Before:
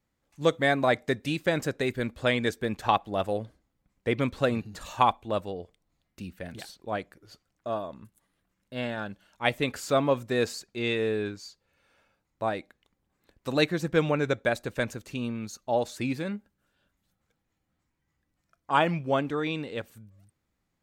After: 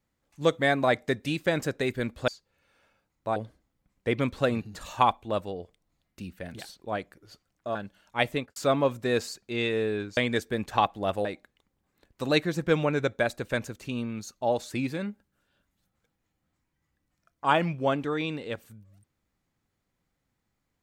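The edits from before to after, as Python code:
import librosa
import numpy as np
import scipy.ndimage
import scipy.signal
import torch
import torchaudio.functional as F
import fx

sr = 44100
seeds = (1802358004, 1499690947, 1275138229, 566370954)

y = fx.studio_fade_out(x, sr, start_s=9.57, length_s=0.25)
y = fx.edit(y, sr, fx.swap(start_s=2.28, length_s=1.08, other_s=11.43, other_length_s=1.08),
    fx.cut(start_s=7.75, length_s=1.26), tone=tone)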